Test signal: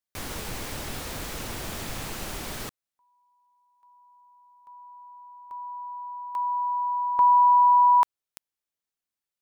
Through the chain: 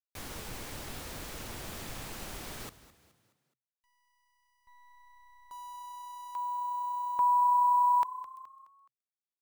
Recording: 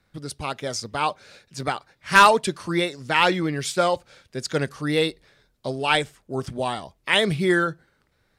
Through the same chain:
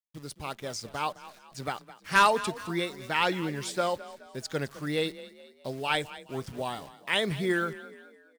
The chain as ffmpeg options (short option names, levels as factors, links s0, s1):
-filter_complex "[0:a]agate=range=0.0224:threshold=0.00224:ratio=3:release=24:detection=peak,acrusher=bits=8:dc=4:mix=0:aa=0.000001,asplit=5[s0][s1][s2][s3][s4];[s1]adelay=211,afreqshift=31,volume=0.15[s5];[s2]adelay=422,afreqshift=62,volume=0.0661[s6];[s3]adelay=633,afreqshift=93,volume=0.0288[s7];[s4]adelay=844,afreqshift=124,volume=0.0127[s8];[s0][s5][s6][s7][s8]amix=inputs=5:normalize=0,volume=0.422"